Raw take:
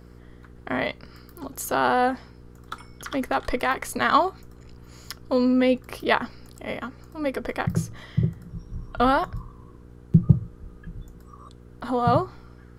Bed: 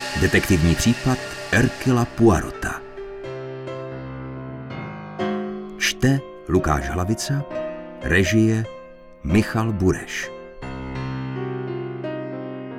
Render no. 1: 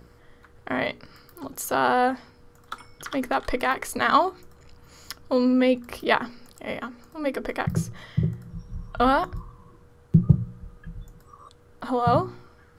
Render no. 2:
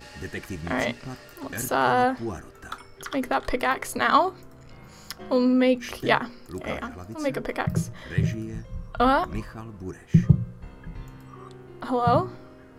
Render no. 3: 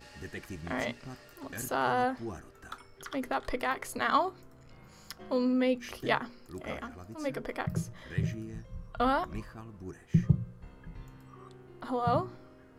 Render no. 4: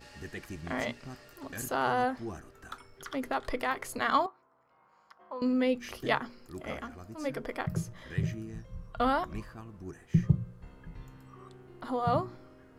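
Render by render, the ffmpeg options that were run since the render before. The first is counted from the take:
-af "bandreject=f=60:t=h:w=4,bandreject=f=120:t=h:w=4,bandreject=f=180:t=h:w=4,bandreject=f=240:t=h:w=4,bandreject=f=300:t=h:w=4,bandreject=f=360:t=h:w=4,bandreject=f=420:t=h:w=4"
-filter_complex "[1:a]volume=-17.5dB[a];[0:a][a]amix=inputs=2:normalize=0"
-af "volume=-7.5dB"
-filter_complex "[0:a]asettb=1/sr,asplit=3[a][b][c];[a]atrim=end=4.264[d];[b]atrim=start=4.26:end=5.42,asetpts=PTS-STARTPTS,afade=t=in:d=0.004:c=qsin,afade=t=out:st=1.156:d=0.004:c=qsin,bandpass=f=980:t=q:w=2.4[e];[c]atrim=start=5.416[f];[d][e]acrossfade=d=0.004:c1=hsin:c2=qsin[g];[g][f]acrossfade=d=0.004:c1=qsin:c2=hsin"

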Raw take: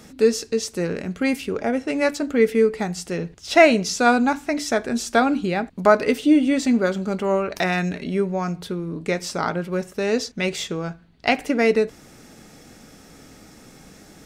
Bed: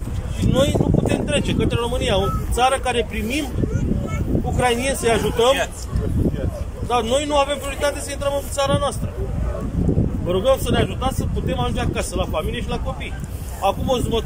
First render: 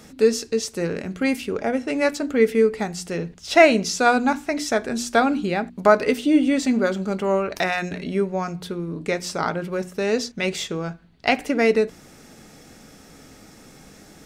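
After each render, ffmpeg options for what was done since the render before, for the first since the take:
-af "bandreject=f=60:t=h:w=6,bandreject=f=120:t=h:w=6,bandreject=f=180:t=h:w=6,bandreject=f=240:t=h:w=6,bandreject=f=300:t=h:w=6,bandreject=f=360:t=h:w=6"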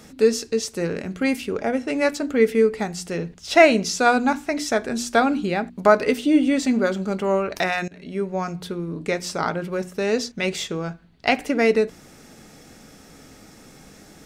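-filter_complex "[0:a]asplit=2[a][b];[a]atrim=end=7.88,asetpts=PTS-STARTPTS,afade=t=out:st=7.876:d=0.004:c=hsin:silence=0.0944061[c];[b]atrim=start=7.88,asetpts=PTS-STARTPTS,afade=t=in:d=0.52:silence=0.0944061[d];[c][d]concat=n=2:v=0:a=1"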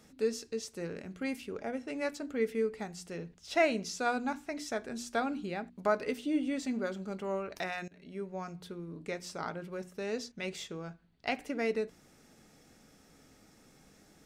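-af "volume=-14dB"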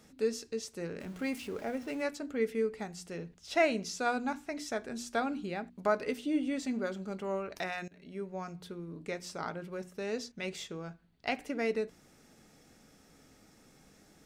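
-filter_complex "[0:a]asettb=1/sr,asplit=3[a][b][c];[a]atrim=end=1.004[d];[b]atrim=start=1:end=2.02,asetpts=PTS-STARTPTS,afade=t=in:d=0.004:c=qsin,afade=t=out:st=1.016:d=0.004:c=qsin,aeval=exprs='val(0)+0.5*0.00447*sgn(val(0))':c=same[e];[c]atrim=start=2.016[f];[d][e]acrossfade=d=0.004:c1=hsin:c2=qsin[g];[g][f]acrossfade=d=0.004:c1=qsin:c2=hsin"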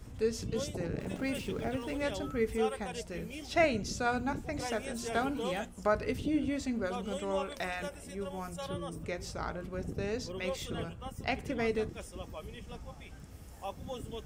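-filter_complex "[1:a]volume=-21.5dB[a];[0:a][a]amix=inputs=2:normalize=0"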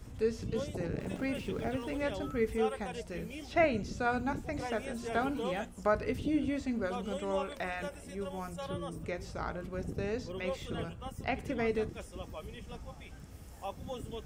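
-filter_complex "[0:a]acrossover=split=2900[a][b];[b]acompressor=threshold=-51dB:ratio=4:attack=1:release=60[c];[a][c]amix=inputs=2:normalize=0"

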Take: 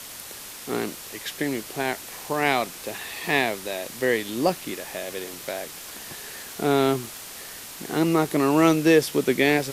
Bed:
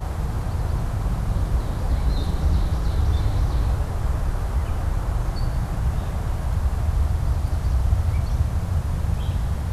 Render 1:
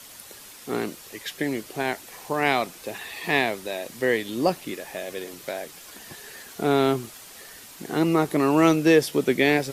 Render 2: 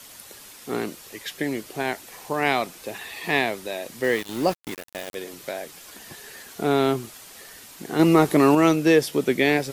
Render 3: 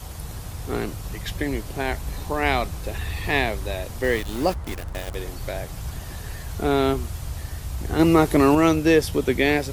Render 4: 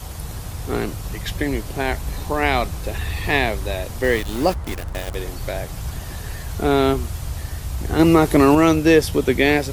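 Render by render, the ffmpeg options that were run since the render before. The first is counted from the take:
-af "afftdn=nr=7:nf=-40"
-filter_complex "[0:a]asettb=1/sr,asplit=3[a][b][c];[a]atrim=end=4.044[d];[b]atrim=start=4.04:end=5.15,asetpts=PTS-STARTPTS,afade=t=in:d=0.004:c=qsin,afade=t=out:st=1.106:d=0.004:c=qsin,aeval=exprs='val(0)*gte(abs(val(0)),0.0282)':c=same[e];[c]atrim=start=5.146[f];[d][e]acrossfade=d=0.004:c1=hsin:c2=qsin[g];[g][f]acrossfade=d=0.004:c1=qsin:c2=hsin,asettb=1/sr,asplit=3[h][i][j];[h]atrim=end=7.994[k];[i]atrim=start=7.99:end=8.55,asetpts=PTS-STARTPTS,afade=t=in:d=0.004:c=qsin,afade=t=out:st=0.556:d=0.004:c=qsin,acontrast=29[l];[j]atrim=start=8.546[m];[k][l]acrossfade=d=0.004:c1=hsin:c2=qsin[n];[n][m]acrossfade=d=0.004:c1=qsin:c2=hsin"
-filter_complex "[1:a]volume=-9.5dB[a];[0:a][a]amix=inputs=2:normalize=0"
-af "volume=3.5dB,alimiter=limit=-3dB:level=0:latency=1"

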